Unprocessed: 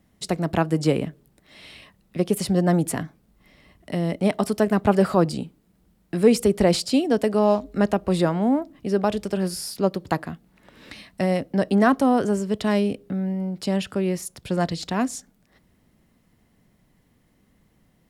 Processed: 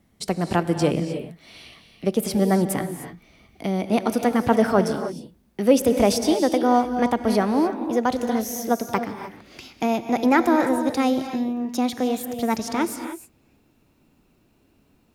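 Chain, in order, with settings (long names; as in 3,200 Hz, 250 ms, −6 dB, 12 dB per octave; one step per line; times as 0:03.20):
gliding playback speed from 104% → 135%
reverb whose tail is shaped and stops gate 330 ms rising, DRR 8 dB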